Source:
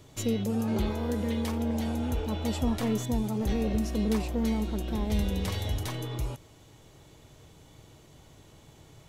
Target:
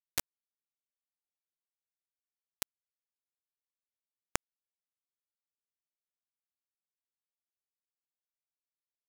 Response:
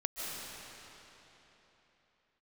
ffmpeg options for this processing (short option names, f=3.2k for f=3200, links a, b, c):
-af "acompressor=threshold=-38dB:ratio=12,acrusher=bits=4:mix=0:aa=0.000001,volume=17dB"